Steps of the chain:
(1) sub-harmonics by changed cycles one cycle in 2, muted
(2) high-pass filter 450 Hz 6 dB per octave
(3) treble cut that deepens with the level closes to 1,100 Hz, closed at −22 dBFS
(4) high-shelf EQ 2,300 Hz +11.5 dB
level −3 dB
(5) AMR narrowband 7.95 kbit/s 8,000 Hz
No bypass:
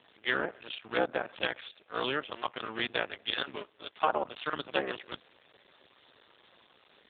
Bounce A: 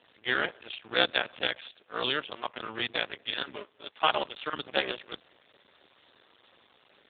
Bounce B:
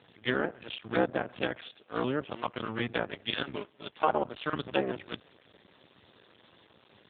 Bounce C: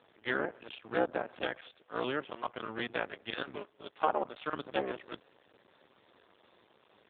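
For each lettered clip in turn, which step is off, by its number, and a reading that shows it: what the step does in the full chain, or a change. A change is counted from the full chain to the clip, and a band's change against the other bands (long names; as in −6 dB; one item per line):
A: 3, 4 kHz band +5.5 dB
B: 2, 125 Hz band +9.0 dB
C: 4, 4 kHz band −7.5 dB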